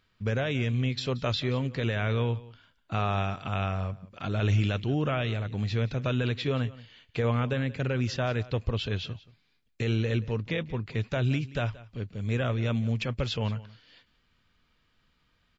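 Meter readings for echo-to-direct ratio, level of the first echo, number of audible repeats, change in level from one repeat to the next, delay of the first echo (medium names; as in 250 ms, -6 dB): -19.5 dB, -19.5 dB, 1, no regular repeats, 178 ms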